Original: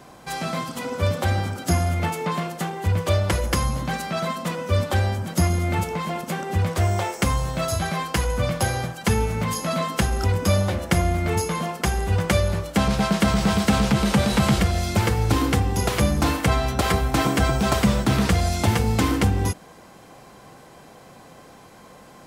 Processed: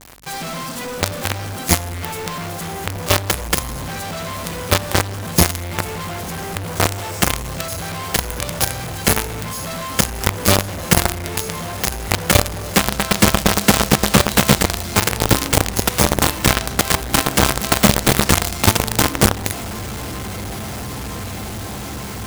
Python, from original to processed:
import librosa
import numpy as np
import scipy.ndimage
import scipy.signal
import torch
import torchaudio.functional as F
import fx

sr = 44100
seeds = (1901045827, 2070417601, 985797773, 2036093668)

y = fx.high_shelf(x, sr, hz=6300.0, db=6.5)
y = fx.echo_diffused(y, sr, ms=1108, feedback_pct=72, wet_db=-12.0)
y = fx.quant_companded(y, sr, bits=2)
y = fx.add_hum(y, sr, base_hz=50, snr_db=32)
y = F.gain(torch.from_numpy(y), -1.5).numpy()